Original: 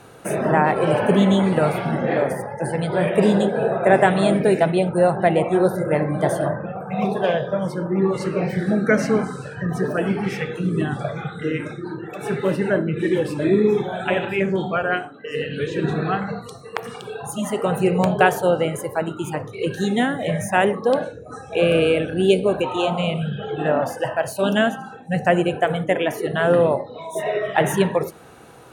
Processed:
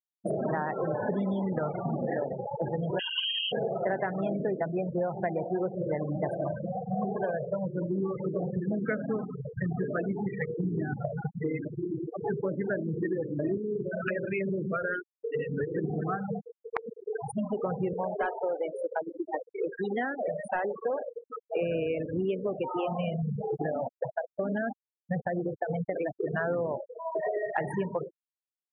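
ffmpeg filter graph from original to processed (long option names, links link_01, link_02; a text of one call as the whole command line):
ffmpeg -i in.wav -filter_complex "[0:a]asettb=1/sr,asplit=3[link_01][link_02][link_03];[link_01]atrim=end=2.994[link_04];[link_02]atrim=start=2.99:end=3.52,asetpts=PTS-STARTPTS,afade=type=in:duration=0.004:curve=qsin,afade=type=out:start_time=0.526:duration=0.004:curve=qsin,bandreject=frequency=60:width_type=h:width=6,bandreject=frequency=120:width_type=h:width=6,bandreject=frequency=180:width_type=h:width=6,bandreject=frequency=240:width_type=h:width=6,bandreject=frequency=300:width_type=h:width=6,bandreject=frequency=360:width_type=h:width=6,bandreject=frequency=420:width_type=h:width=6,bandreject=frequency=480:width_type=h:width=6,lowpass=frequency=2900:width_type=q:width=0.5098,lowpass=frequency=2900:width_type=q:width=0.6013,lowpass=frequency=2900:width_type=q:width=0.9,lowpass=frequency=2900:width_type=q:width=2.563,afreqshift=-3400[link_05];[link_03]atrim=start=3.516[link_06];[link_04][link_05]acrossfade=duration=0.004:curve1=hsin:curve2=qsin[link_07];[link_07][link_06]acrossfade=duration=0.004:curve1=qsin:curve2=hsin,asettb=1/sr,asplit=3[link_08][link_09][link_10];[link_08]atrim=end=13.574[link_11];[link_09]atrim=start=13.57:end=15.14,asetpts=PTS-STARTPTS,afade=type=in:duration=0.004:curve=qsin,afade=type=out:start_time=1.566:duration=0.004:curve=qsin,asuperstop=centerf=890:order=12:qfactor=1.7,acompressor=threshold=-19dB:ratio=5:attack=3.2:release=140:knee=1:detection=peak[link_12];[link_10]atrim=start=15.136[link_13];[link_11][link_12]acrossfade=duration=0.004:curve1=hsin:curve2=qsin[link_14];[link_14][link_13]acrossfade=duration=0.004:curve1=qsin:curve2=hsin,asettb=1/sr,asplit=3[link_15][link_16][link_17];[link_15]atrim=end=17.934[link_18];[link_16]atrim=start=17.93:end=21.19,asetpts=PTS-STARTPTS,afade=type=in:duration=0.004:curve=qsin,afade=type=out:start_time=3.256:duration=0.004:curve=qsin,highpass=340,asoftclip=type=hard:threshold=-14.5dB,asplit=2[link_19][link_20];[link_20]adelay=306,lowpass=frequency=3200:poles=1,volume=-17dB,asplit=2[link_21][link_22];[link_22]adelay=306,lowpass=frequency=3200:poles=1,volume=0.45,asplit=2[link_23][link_24];[link_24]adelay=306,lowpass=frequency=3200:poles=1,volume=0.45,asplit=2[link_25][link_26];[link_26]adelay=306,lowpass=frequency=3200:poles=1,volume=0.45[link_27];[link_19][link_21][link_23][link_25][link_27]amix=inputs=5:normalize=0,atrim=end_sample=143766[link_28];[link_17]atrim=start=21.186[link_29];[link_18][link_28]acrossfade=duration=0.004:curve1=hsin:curve2=qsin[link_30];[link_30][link_29]acrossfade=duration=0.004:curve1=qsin:curve2=hsin,asettb=1/sr,asplit=3[link_31][link_32][link_33];[link_31]atrim=end=23.564[link_34];[link_32]atrim=start=23.56:end=26.2,asetpts=PTS-STARTPTS,afade=type=in:duration=0.004:curve=qsin,afade=type=out:start_time=2.636:duration=0.004:curve=qsin,agate=range=-12dB:threshold=-26dB:ratio=16:release=100:detection=peak,acompressor=threshold=-18dB:ratio=12:attack=3.2:release=140:knee=1:detection=peak,highshelf=frequency=3900:gain=-6.5[link_35];[link_33]atrim=start=26.196[link_36];[link_34][link_35]acrossfade=duration=0.004:curve1=hsin:curve2=qsin[link_37];[link_37][link_36]acrossfade=duration=0.004:curve1=qsin:curve2=hsin,afftfilt=real='re*gte(hypot(re,im),0.126)':imag='im*gte(hypot(re,im),0.126)':win_size=1024:overlap=0.75,highshelf=frequency=2600:width_type=q:width=1.5:gain=-7,acompressor=threshold=-28dB:ratio=6" out.wav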